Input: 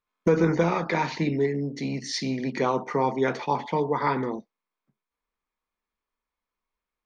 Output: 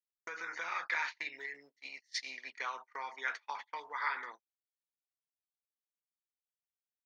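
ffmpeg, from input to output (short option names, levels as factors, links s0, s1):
-af "agate=range=0.0178:threshold=0.0398:ratio=16:detection=peak,acompressor=threshold=0.0631:ratio=6,highpass=f=1600:t=q:w=2,volume=0.668"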